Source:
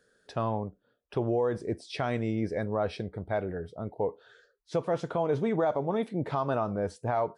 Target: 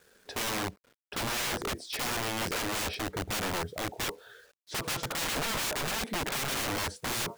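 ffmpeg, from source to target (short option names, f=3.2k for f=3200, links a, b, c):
-af "aeval=exprs='(mod(39.8*val(0)+1,2)-1)/39.8':c=same,acrusher=bits=10:mix=0:aa=0.000001,volume=5dB"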